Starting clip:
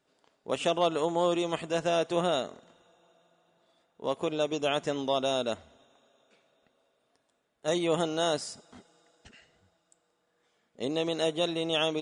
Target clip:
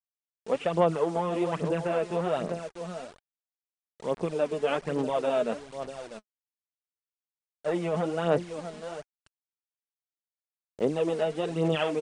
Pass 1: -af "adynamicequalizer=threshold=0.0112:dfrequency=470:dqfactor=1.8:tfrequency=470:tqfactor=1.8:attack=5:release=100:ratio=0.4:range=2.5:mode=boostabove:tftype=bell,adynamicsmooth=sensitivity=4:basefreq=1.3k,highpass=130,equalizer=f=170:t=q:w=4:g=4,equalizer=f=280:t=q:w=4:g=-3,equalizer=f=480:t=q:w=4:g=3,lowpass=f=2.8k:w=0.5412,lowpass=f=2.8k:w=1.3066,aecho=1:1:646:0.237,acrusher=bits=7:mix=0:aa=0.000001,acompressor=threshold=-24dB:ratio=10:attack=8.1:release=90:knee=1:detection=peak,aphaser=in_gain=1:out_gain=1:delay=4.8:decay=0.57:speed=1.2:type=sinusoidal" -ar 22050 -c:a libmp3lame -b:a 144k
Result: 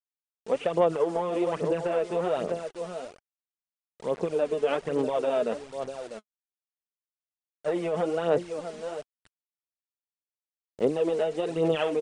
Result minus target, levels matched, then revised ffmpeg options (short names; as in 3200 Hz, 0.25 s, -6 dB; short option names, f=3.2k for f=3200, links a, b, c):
125 Hz band -5.5 dB
-af "adynamicequalizer=threshold=0.0112:dfrequency=170:dqfactor=1.8:tfrequency=170:tqfactor=1.8:attack=5:release=100:ratio=0.4:range=2.5:mode=boostabove:tftype=bell,adynamicsmooth=sensitivity=4:basefreq=1.3k,highpass=130,equalizer=f=170:t=q:w=4:g=4,equalizer=f=280:t=q:w=4:g=-3,equalizer=f=480:t=q:w=4:g=3,lowpass=f=2.8k:w=0.5412,lowpass=f=2.8k:w=1.3066,aecho=1:1:646:0.237,acrusher=bits=7:mix=0:aa=0.000001,acompressor=threshold=-24dB:ratio=10:attack=8.1:release=90:knee=1:detection=peak,aphaser=in_gain=1:out_gain=1:delay=4.8:decay=0.57:speed=1.2:type=sinusoidal" -ar 22050 -c:a libmp3lame -b:a 144k